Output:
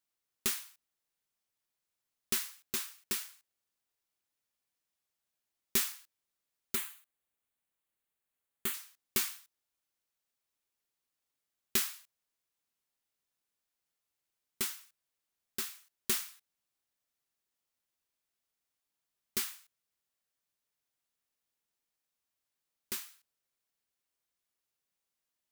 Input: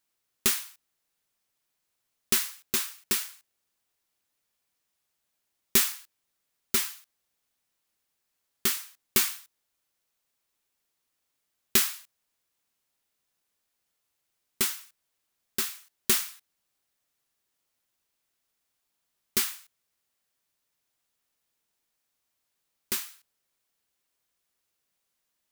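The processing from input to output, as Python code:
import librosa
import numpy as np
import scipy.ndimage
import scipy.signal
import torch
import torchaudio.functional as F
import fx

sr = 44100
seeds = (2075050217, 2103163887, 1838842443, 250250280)

y = fx.peak_eq(x, sr, hz=5300.0, db=-13.5, octaves=0.52, at=(6.75, 8.74))
y = y * 10.0 ** (-8.0 / 20.0)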